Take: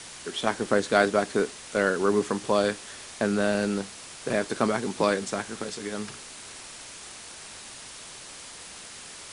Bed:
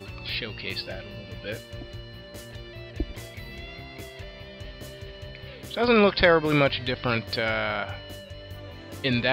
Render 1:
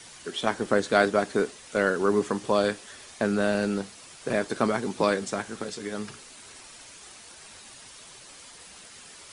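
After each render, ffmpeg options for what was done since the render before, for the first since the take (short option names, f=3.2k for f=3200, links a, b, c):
-af "afftdn=nr=7:nf=-44"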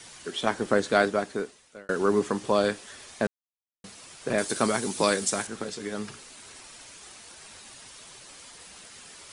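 -filter_complex "[0:a]asettb=1/sr,asplit=3[a][b][c];[a]atrim=end=4.384[d];[b]atrim=start=4.38:end=5.47,asetpts=PTS-STARTPTS,afade=t=in:d=0.004:c=qsin,afade=t=out:st=1.086:d=0.004:c=qsin,aemphasis=mode=production:type=75fm[e];[c]atrim=start=5.466[f];[d][e]acrossfade=d=0.004:c1=hsin:c2=qsin[g];[g][f]acrossfade=d=0.004:c1=qsin:c2=hsin,asplit=4[h][i][j][k];[h]atrim=end=1.89,asetpts=PTS-STARTPTS,afade=t=out:st=0.89:d=1[l];[i]atrim=start=1.89:end=3.27,asetpts=PTS-STARTPTS,afade=t=in:d=0.004:c=hsin,afade=t=out:st=1.376:d=0.004:c=hsin[m];[j]atrim=start=3.27:end=3.84,asetpts=PTS-STARTPTS,volume=0[n];[k]atrim=start=3.84,asetpts=PTS-STARTPTS,afade=t=in:d=0.004:c=hsin[o];[l][m][n][o]concat=n=4:v=0:a=1"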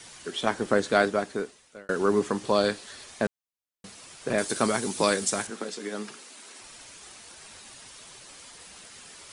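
-filter_complex "[0:a]asettb=1/sr,asplit=3[a][b][c];[a]atrim=end=2.454[d];[b]atrim=start=2.45:end=3.04,asetpts=PTS-STARTPTS,afade=t=in:d=0.004:c=qsin,afade=t=out:st=0.586:d=0.004:c=qsin,equalizer=f=4.2k:w=4.7:g=7.5[e];[c]atrim=start=3.036[f];[d][e]acrossfade=d=0.004:c1=hsin:c2=qsin[g];[g][f]acrossfade=d=0.004:c1=qsin:c2=hsin,asettb=1/sr,asplit=3[h][i][j];[h]atrim=end=5.504[k];[i]atrim=start=5.5:end=6.6,asetpts=PTS-STARTPTS,afade=t=in:d=0.004:c=qsin,afade=t=out:st=1.096:d=0.004:c=qsin,highpass=f=200:w=0.5412,highpass=f=200:w=1.3066[l];[j]atrim=start=6.596[m];[k][l]acrossfade=d=0.004:c1=hsin:c2=qsin[n];[n][m]acrossfade=d=0.004:c1=qsin:c2=hsin"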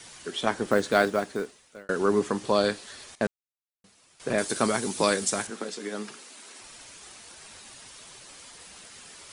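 -filter_complex "[0:a]asettb=1/sr,asplit=3[a][b][c];[a]atrim=end=0.674[d];[b]atrim=start=0.67:end=1.84,asetpts=PTS-STARTPTS,afade=t=in:d=0.004:c=qsin,afade=t=out:st=1.166:d=0.004:c=qsin,acrusher=bits=7:mode=log:mix=0:aa=0.000001[e];[c]atrim=start=1.836[f];[d][e]acrossfade=d=0.004:c1=hsin:c2=qsin[g];[g][f]acrossfade=d=0.004:c1=qsin:c2=hsin,asettb=1/sr,asplit=3[h][i][j];[h]atrim=end=3.154[k];[i]atrim=start=3.15:end=4.2,asetpts=PTS-STARTPTS,afade=t=in:d=0.004:c=qsin,afade=t=out:st=1.046:d=0.004:c=qsin,agate=range=-13dB:threshold=-41dB:ratio=16:release=100:detection=peak[l];[j]atrim=start=4.196[m];[k][l]acrossfade=d=0.004:c1=hsin:c2=qsin[n];[n][m]acrossfade=d=0.004:c1=qsin:c2=hsin"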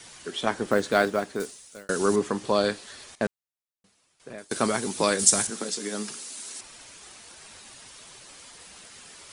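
-filter_complex "[0:a]asettb=1/sr,asplit=3[a][b][c];[a]atrim=end=1.404[d];[b]atrim=start=1.4:end=2.16,asetpts=PTS-STARTPTS,afade=t=in:d=0.004:c=qsin,afade=t=out:st=0.756:d=0.004:c=qsin,bass=f=250:g=2,treble=f=4k:g=14[e];[c]atrim=start=2.156[f];[d][e]acrossfade=d=0.004:c1=hsin:c2=qsin[g];[g][f]acrossfade=d=0.004:c1=qsin:c2=hsin,asettb=1/sr,asplit=3[h][i][j];[h]atrim=end=5.194[k];[i]atrim=start=5.19:end=6.61,asetpts=PTS-STARTPTS,afade=t=in:d=0.004:c=qsin,afade=t=out:st=1.416:d=0.004:c=qsin,bass=f=250:g=5,treble=f=4k:g=11[l];[j]atrim=start=6.606[m];[k][l]acrossfade=d=0.004:c1=hsin:c2=qsin[n];[n][m]acrossfade=d=0.004:c1=qsin:c2=hsin,asplit=2[o][p];[o]atrim=end=4.51,asetpts=PTS-STARTPTS,afade=t=out:st=3.26:d=1.25:silence=0.0707946[q];[p]atrim=start=4.51,asetpts=PTS-STARTPTS,afade=t=in:d=0.004:c=hsin:silence=0.0707946[r];[q][r]concat=n=2:v=0:a=1"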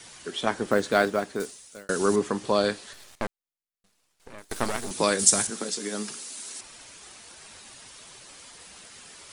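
-filter_complex "[0:a]asettb=1/sr,asplit=3[a][b][c];[a]atrim=end=2.934[d];[b]atrim=start=2.93:end=4.91,asetpts=PTS-STARTPTS,afade=t=in:d=0.004:c=qsin,afade=t=out:st=1.976:d=0.004:c=qsin,aeval=exprs='max(val(0),0)':c=same[e];[c]atrim=start=4.906[f];[d][e]acrossfade=d=0.004:c1=hsin:c2=qsin[g];[g][f]acrossfade=d=0.004:c1=qsin:c2=hsin"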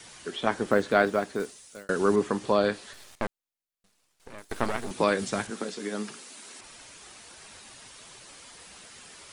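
-filter_complex "[0:a]acrossover=split=3400[a][b];[b]acompressor=threshold=-46dB:ratio=4:attack=1:release=60[c];[a][c]amix=inputs=2:normalize=0"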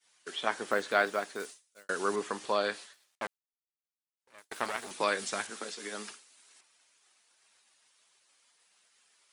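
-af "agate=range=-33dB:threshold=-36dB:ratio=3:detection=peak,highpass=f=1.1k:p=1"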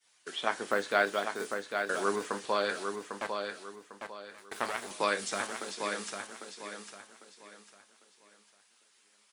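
-filter_complex "[0:a]asplit=2[a][b];[b]adelay=30,volume=-13.5dB[c];[a][c]amix=inputs=2:normalize=0,asplit=2[d][e];[e]aecho=0:1:800|1600|2400|3200:0.501|0.16|0.0513|0.0164[f];[d][f]amix=inputs=2:normalize=0"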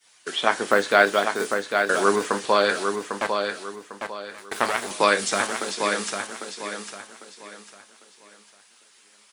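-af "volume=10.5dB,alimiter=limit=-3dB:level=0:latency=1"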